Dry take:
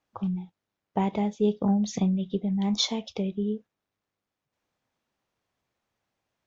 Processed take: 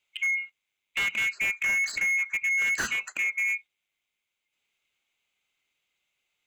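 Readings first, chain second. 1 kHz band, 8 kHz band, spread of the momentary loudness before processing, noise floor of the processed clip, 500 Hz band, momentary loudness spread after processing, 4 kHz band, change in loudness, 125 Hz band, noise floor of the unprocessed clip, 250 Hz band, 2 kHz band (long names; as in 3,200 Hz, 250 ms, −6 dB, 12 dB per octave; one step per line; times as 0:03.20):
−9.0 dB, can't be measured, 8 LU, −84 dBFS, −20.5 dB, 6 LU, −4.0 dB, +2.0 dB, below −20 dB, below −85 dBFS, −27.5 dB, +26.0 dB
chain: neighbouring bands swapped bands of 2,000 Hz
tilt shelving filter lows −3.5 dB, about 910 Hz
slew-rate limiting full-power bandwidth 140 Hz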